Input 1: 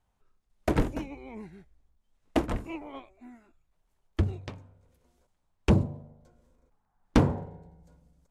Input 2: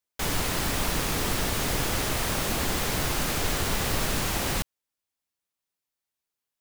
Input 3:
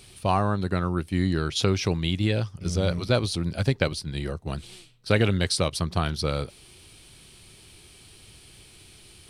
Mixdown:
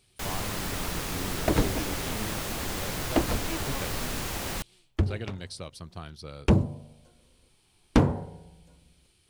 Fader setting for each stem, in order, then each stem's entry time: +1.0, -5.5, -15.5 dB; 0.80, 0.00, 0.00 s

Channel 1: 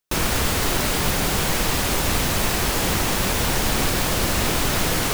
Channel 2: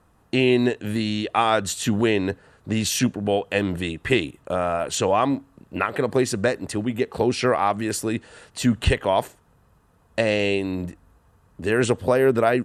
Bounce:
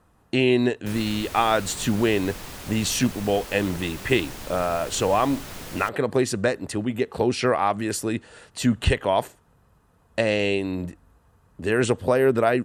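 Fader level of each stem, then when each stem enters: -16.5, -1.0 dB; 0.75, 0.00 s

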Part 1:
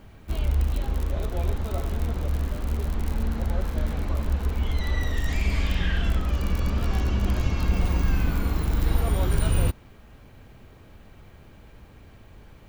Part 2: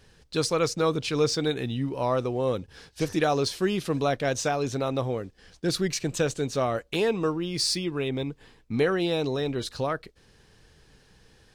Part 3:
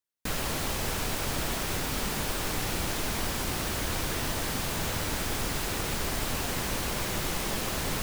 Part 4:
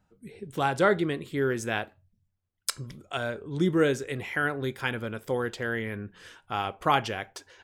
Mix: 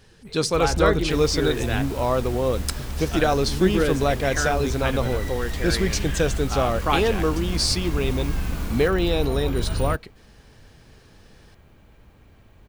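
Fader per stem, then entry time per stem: -3.5, +3.0, -9.5, +0.5 dB; 0.25, 0.00, 0.85, 0.00 s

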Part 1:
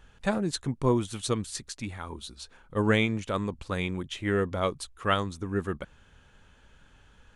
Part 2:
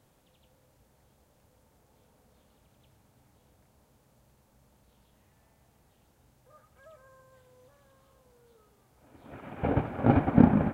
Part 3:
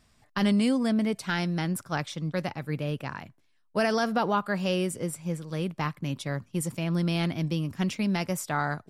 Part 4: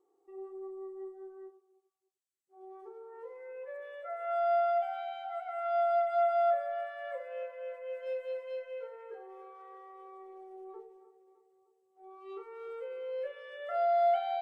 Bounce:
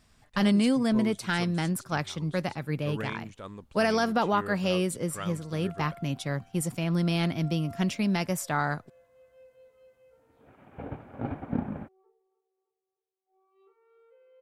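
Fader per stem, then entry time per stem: -12.5, -11.5, +0.5, -19.0 dB; 0.10, 1.15, 0.00, 1.30 s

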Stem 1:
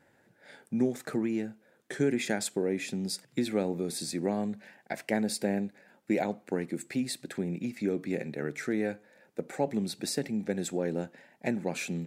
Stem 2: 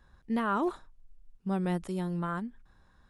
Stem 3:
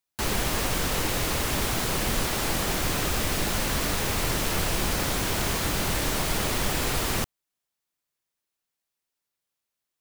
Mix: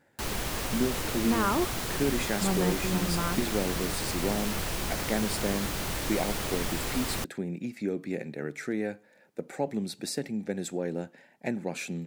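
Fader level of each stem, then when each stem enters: -1.0, +1.5, -6.0 dB; 0.00, 0.95, 0.00 s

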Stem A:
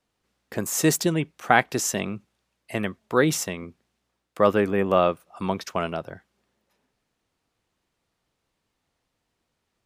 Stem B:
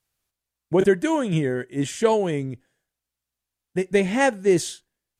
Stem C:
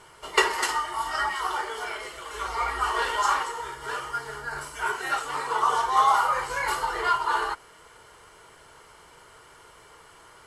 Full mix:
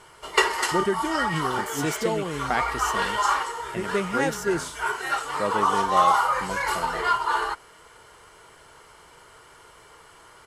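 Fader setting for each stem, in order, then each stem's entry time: -8.5, -7.0, +1.0 dB; 1.00, 0.00, 0.00 s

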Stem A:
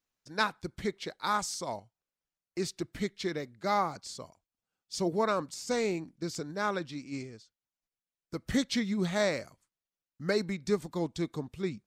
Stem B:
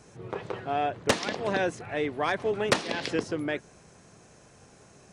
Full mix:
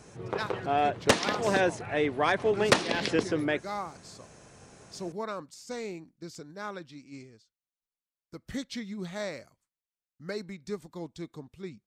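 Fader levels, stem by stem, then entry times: -7.0, +2.0 dB; 0.00, 0.00 s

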